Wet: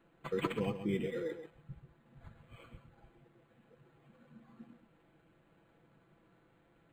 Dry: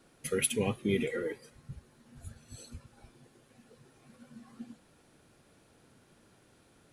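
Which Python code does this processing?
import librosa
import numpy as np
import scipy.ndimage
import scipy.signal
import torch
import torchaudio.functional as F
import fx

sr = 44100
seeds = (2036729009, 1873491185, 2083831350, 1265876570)

p1 = x + 0.53 * np.pad(x, (int(6.0 * sr / 1000.0), 0))[:len(x)]
p2 = p1 + fx.echo_single(p1, sr, ms=134, db=-10.0, dry=0)
p3 = np.interp(np.arange(len(p2)), np.arange(len(p2))[::8], p2[::8])
y = p3 * 10.0 ** (-5.5 / 20.0)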